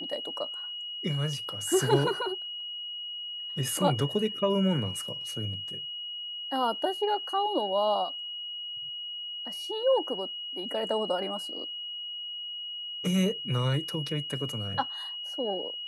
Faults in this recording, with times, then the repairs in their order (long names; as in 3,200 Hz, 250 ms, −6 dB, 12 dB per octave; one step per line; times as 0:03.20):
whistle 2,900 Hz −35 dBFS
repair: notch filter 2,900 Hz, Q 30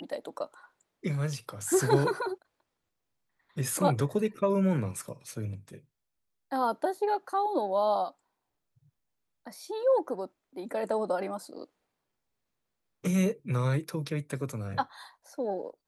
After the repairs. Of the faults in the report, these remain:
none of them is left